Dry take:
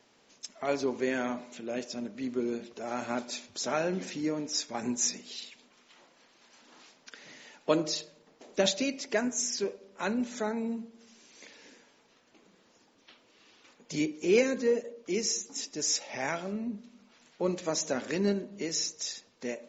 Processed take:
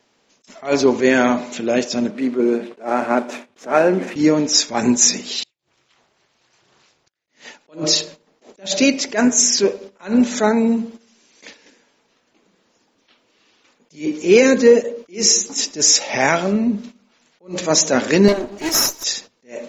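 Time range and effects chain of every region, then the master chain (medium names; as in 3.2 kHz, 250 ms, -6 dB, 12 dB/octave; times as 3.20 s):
2.10–4.16 s: median filter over 9 samples + band-pass 240–5700 Hz + dynamic bell 3.7 kHz, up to -8 dB, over -56 dBFS, Q 1
5.43–7.28 s: inverted gate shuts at -43 dBFS, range -30 dB + ring modulator 110 Hz
18.28–19.04 s: comb filter that takes the minimum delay 3.1 ms + bass shelf 170 Hz -6 dB
whole clip: gate -51 dBFS, range -15 dB; loudness maximiser +18 dB; attacks held to a fixed rise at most 230 dB/s; trim -1 dB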